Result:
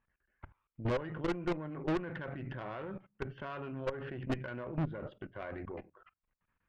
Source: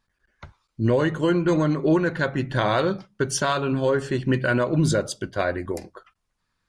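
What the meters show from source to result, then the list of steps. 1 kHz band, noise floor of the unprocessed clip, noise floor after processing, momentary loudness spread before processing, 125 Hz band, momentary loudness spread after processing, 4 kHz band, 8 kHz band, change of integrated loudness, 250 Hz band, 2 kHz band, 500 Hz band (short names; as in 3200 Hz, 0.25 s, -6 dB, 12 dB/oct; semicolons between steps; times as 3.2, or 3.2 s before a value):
-16.0 dB, -76 dBFS, under -85 dBFS, 6 LU, -15.0 dB, 11 LU, -19.5 dB, under -30 dB, -16.0 dB, -15.5 dB, -17.0 dB, -16.0 dB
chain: level quantiser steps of 19 dB; steep low-pass 2900 Hz 48 dB/oct; tube stage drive 29 dB, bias 0.65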